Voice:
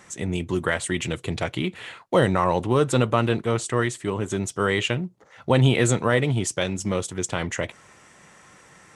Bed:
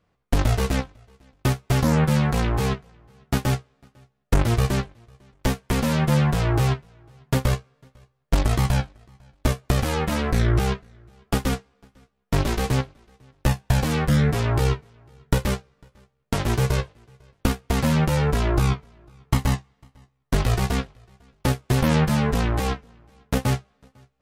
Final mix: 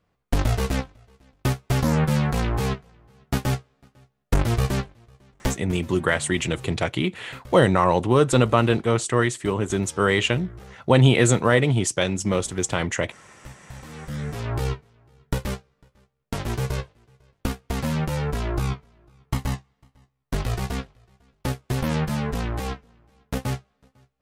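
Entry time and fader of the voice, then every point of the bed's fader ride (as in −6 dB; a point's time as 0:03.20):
5.40 s, +2.5 dB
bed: 0:05.47 −1.5 dB
0:05.86 −22 dB
0:13.70 −22 dB
0:14.53 −5 dB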